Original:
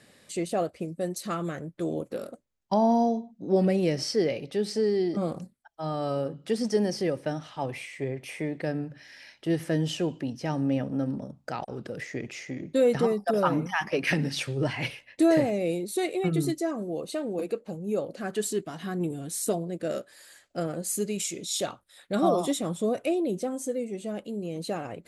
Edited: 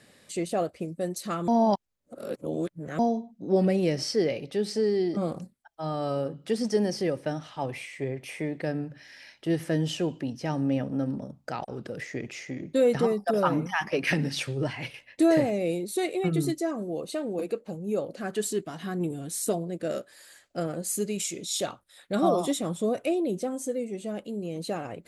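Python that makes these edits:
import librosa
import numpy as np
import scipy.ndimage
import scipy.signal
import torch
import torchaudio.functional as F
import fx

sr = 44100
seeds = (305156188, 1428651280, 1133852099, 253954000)

y = fx.edit(x, sr, fx.reverse_span(start_s=1.48, length_s=1.51),
    fx.fade_out_to(start_s=14.5, length_s=0.44, floor_db=-7.5), tone=tone)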